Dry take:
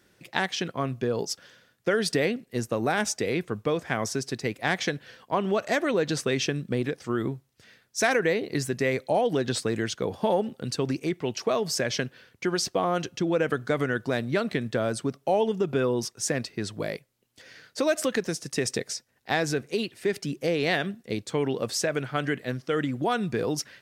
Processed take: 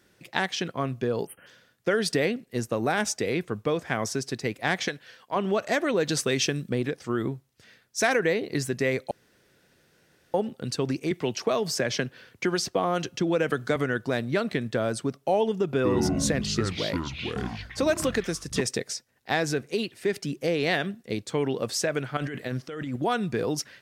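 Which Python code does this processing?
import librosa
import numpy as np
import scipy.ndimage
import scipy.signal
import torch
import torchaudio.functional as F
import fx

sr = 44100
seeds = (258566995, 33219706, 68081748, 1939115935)

y = fx.spec_erase(x, sr, start_s=1.26, length_s=0.21, low_hz=3200.0, high_hz=8400.0)
y = fx.low_shelf(y, sr, hz=500.0, db=-9.5, at=(4.88, 5.36))
y = fx.high_shelf(y, sr, hz=5000.0, db=8.0, at=(6.0, 6.7))
y = fx.band_squash(y, sr, depth_pct=40, at=(11.11, 13.76))
y = fx.echo_pitch(y, sr, ms=100, semitones=-5, count=3, db_per_echo=-3.0, at=(15.75, 18.61))
y = fx.over_compress(y, sr, threshold_db=-32.0, ratio=-1.0, at=(22.17, 22.96))
y = fx.edit(y, sr, fx.room_tone_fill(start_s=9.11, length_s=1.23), tone=tone)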